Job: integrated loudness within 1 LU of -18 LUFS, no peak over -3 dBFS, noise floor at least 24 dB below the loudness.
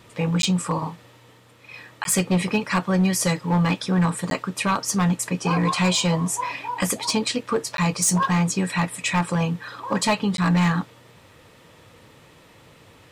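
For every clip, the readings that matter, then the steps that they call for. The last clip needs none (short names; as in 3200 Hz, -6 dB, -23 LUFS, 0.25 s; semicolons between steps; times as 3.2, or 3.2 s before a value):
clipped 1.1%; flat tops at -14.0 dBFS; dropouts 5; longest dropout 12 ms; loudness -22.5 LUFS; peak -14.0 dBFS; loudness target -18.0 LUFS
-> clip repair -14 dBFS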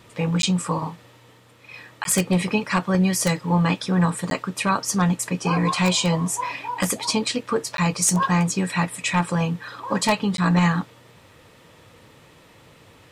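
clipped 0.0%; dropouts 5; longest dropout 12 ms
-> interpolate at 0.42/2.04/4.3/7.77/10.37, 12 ms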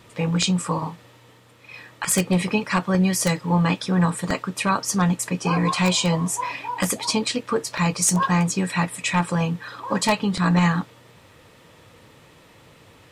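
dropouts 0; loudness -22.0 LUFS; peak -5.0 dBFS; loudness target -18.0 LUFS
-> gain +4 dB; limiter -3 dBFS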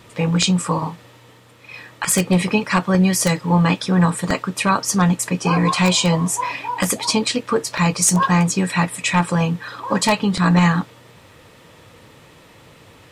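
loudness -18.5 LUFS; peak -3.0 dBFS; noise floor -48 dBFS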